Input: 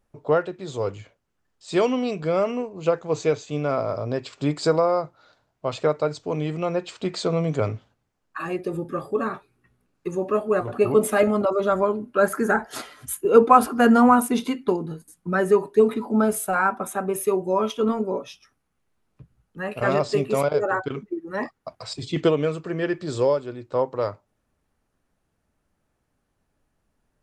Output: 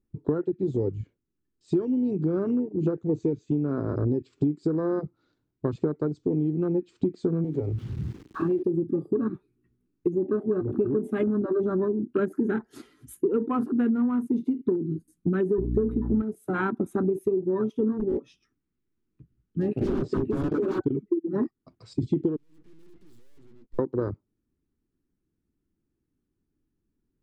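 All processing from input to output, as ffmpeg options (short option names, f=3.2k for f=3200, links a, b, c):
-filter_complex "[0:a]asettb=1/sr,asplit=3[a][b][c];[a]atrim=end=7.444[d];[b]atrim=start=7.44:end=8.63,asetpts=PTS-STARTPTS,afade=t=in:d=0.004:c=qsin,afade=t=out:st=1.186:d=0.004:c=qsin,aeval=exprs='val(0)+0.5*0.0316*sgn(val(0))':c=same,highpass=44,acrossover=split=410|5700[e][f][g];[e]acompressor=threshold=-34dB:ratio=4[h];[f]acompressor=threshold=-27dB:ratio=4[i];[g]acompressor=threshold=-57dB:ratio=4[j];[h][i][j]amix=inputs=3:normalize=0[k];[c]atrim=start=8.626[l];[d][k]acrossfade=d=0.004:c1=hsin:c2=qsin[m];[m][l]acrossfade=d=0.004:c1=qsin:c2=hsin,asettb=1/sr,asplit=3[n][o][p];[n]atrim=end=15.584[q];[o]atrim=start=15.58:end=16.22,asetpts=PTS-STARTPTS,afade=t=in:d=0.004:c=qsin,afade=t=out:st=0.636:d=0.004:c=qsin,acontrast=79,aeval=exprs='val(0)+0.0708*(sin(2*PI*60*n/s)+sin(2*PI*2*60*n/s)/2+sin(2*PI*3*60*n/s)/3+sin(2*PI*4*60*n/s)/4+sin(2*PI*5*60*n/s)/5)':c=same[r];[p]atrim=start=16.216[s];[q][r]acrossfade=d=0.004:c1=hsin:c2=qsin[t];[t][s]acrossfade=d=0.004:c1=qsin:c2=hsin,asettb=1/sr,asplit=3[u][v][w];[u]atrim=end=17.994[x];[v]atrim=start=17.99:end=20.79,asetpts=PTS-STARTPTS,afade=t=in:d=0.004:c=qsin,afade=t=out:st=2.796:d=0.004:c=qsin,lowpass=f=9.3k:w=0.5412,lowpass=f=9.3k:w=1.3066,equalizer=f=2k:w=0.81:g=3.5,aeval=exprs='0.0794*(abs(mod(val(0)/0.0794+3,4)-2)-1)':c=same[y];[w]atrim=start=20.786[z];[x][y]acrossfade=d=0.004:c1=hsin:c2=qsin[aa];[aa][z]acrossfade=d=0.004:c1=qsin:c2=hsin,asettb=1/sr,asplit=3[ab][ac][ad];[ab]atrim=end=22.364[ae];[ac]atrim=start=22.36:end=23.79,asetpts=PTS-STARTPTS,afade=t=in:d=0.004:c=qsin,afade=t=out:st=1.426:d=0.004:c=qsin,agate=range=-33dB:threshold=-41dB:ratio=3:release=100:detection=peak,aeval=exprs='(tanh(112*val(0)+0.25)-tanh(0.25))/112':c=same,aeval=exprs='abs(val(0))':c=same[af];[ad]atrim=start=23.786[ag];[ae][af]acrossfade=d=0.004:c1=hsin:c2=qsin[ah];[ah][ag]acrossfade=d=0.004:c1=qsin:c2=hsin,afwtdn=0.0562,lowshelf=f=460:t=q:w=3:g=10.5,acompressor=threshold=-22dB:ratio=12"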